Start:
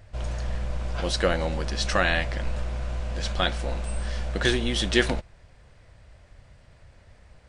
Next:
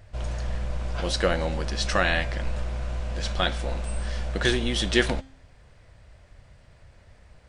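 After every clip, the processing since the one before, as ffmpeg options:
-af "bandreject=f=266:t=h:w=4,bandreject=f=532:t=h:w=4,bandreject=f=798:t=h:w=4,bandreject=f=1.064k:t=h:w=4,bandreject=f=1.33k:t=h:w=4,bandreject=f=1.596k:t=h:w=4,bandreject=f=1.862k:t=h:w=4,bandreject=f=2.128k:t=h:w=4,bandreject=f=2.394k:t=h:w=4,bandreject=f=2.66k:t=h:w=4,bandreject=f=2.926k:t=h:w=4,bandreject=f=3.192k:t=h:w=4,bandreject=f=3.458k:t=h:w=4,bandreject=f=3.724k:t=h:w=4,bandreject=f=3.99k:t=h:w=4,bandreject=f=4.256k:t=h:w=4,bandreject=f=4.522k:t=h:w=4,bandreject=f=4.788k:t=h:w=4,bandreject=f=5.054k:t=h:w=4,bandreject=f=5.32k:t=h:w=4,bandreject=f=5.586k:t=h:w=4,bandreject=f=5.852k:t=h:w=4,bandreject=f=6.118k:t=h:w=4,bandreject=f=6.384k:t=h:w=4,bandreject=f=6.65k:t=h:w=4,bandreject=f=6.916k:t=h:w=4,bandreject=f=7.182k:t=h:w=4,bandreject=f=7.448k:t=h:w=4,bandreject=f=7.714k:t=h:w=4,bandreject=f=7.98k:t=h:w=4,bandreject=f=8.246k:t=h:w=4"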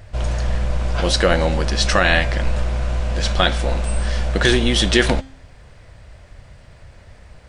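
-af "alimiter=level_in=10dB:limit=-1dB:release=50:level=0:latency=1,volume=-1dB"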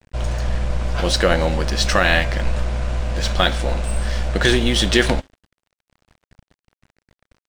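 -af "aeval=exprs='sgn(val(0))*max(abs(val(0))-0.0158,0)':c=same"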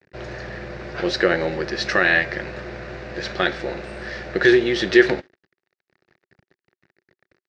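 -af "highpass=160,equalizer=f=240:t=q:w=4:g=-8,equalizer=f=370:t=q:w=4:g=10,equalizer=f=670:t=q:w=4:g=-3,equalizer=f=1k:t=q:w=4:g=-7,equalizer=f=1.8k:t=q:w=4:g=7,equalizer=f=3.2k:t=q:w=4:g=-8,lowpass=f=4.9k:w=0.5412,lowpass=f=4.9k:w=1.3066,volume=-2.5dB"

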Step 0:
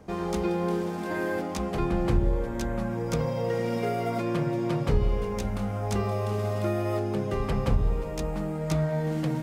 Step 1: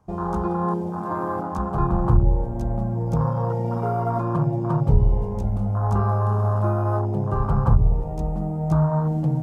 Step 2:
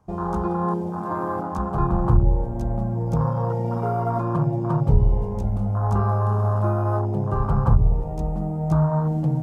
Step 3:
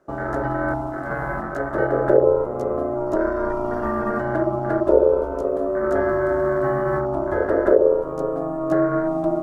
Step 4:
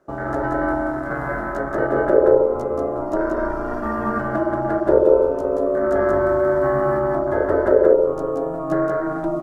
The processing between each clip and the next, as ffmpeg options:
-af "afwtdn=0.0316,equalizer=f=125:t=o:w=1:g=5,equalizer=f=250:t=o:w=1:g=-6,equalizer=f=500:t=o:w=1:g=-8,equalizer=f=1k:t=o:w=1:g=9,equalizer=f=2k:t=o:w=1:g=-8,equalizer=f=4k:t=o:w=1:g=-4,volume=6.5dB"
-af anull
-af "aeval=exprs='val(0)*sin(2*PI*480*n/s)':c=same,volume=3dB"
-af "aecho=1:1:180:0.668"

